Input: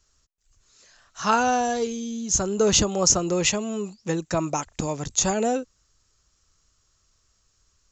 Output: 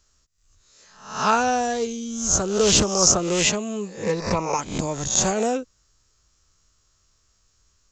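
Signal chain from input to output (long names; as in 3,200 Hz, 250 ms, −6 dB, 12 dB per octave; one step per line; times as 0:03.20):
peak hold with a rise ahead of every peak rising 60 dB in 0.54 s
0:04.03–0:04.59: EQ curve with evenly spaced ripples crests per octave 0.88, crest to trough 12 dB
highs frequency-modulated by the lows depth 0.25 ms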